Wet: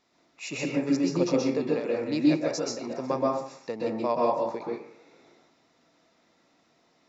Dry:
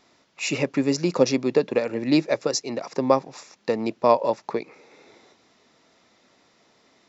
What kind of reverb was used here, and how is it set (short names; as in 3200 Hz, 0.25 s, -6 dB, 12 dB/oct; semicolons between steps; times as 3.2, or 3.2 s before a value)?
plate-style reverb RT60 0.56 s, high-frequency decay 0.5×, pre-delay 0.115 s, DRR -3.5 dB; gain -10.5 dB